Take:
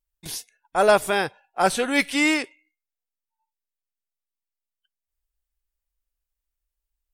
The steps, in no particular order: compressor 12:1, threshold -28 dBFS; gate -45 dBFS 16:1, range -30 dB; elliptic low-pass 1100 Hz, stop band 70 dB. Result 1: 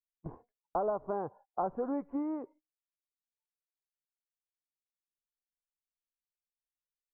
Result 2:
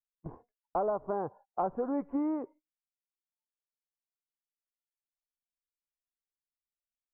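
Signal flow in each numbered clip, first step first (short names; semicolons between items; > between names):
gate > compressor > elliptic low-pass; gate > elliptic low-pass > compressor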